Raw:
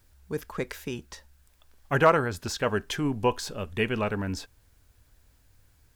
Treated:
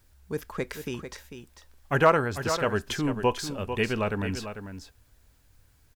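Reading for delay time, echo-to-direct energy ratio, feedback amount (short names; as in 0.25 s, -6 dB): 0.446 s, -9.5 dB, no steady repeat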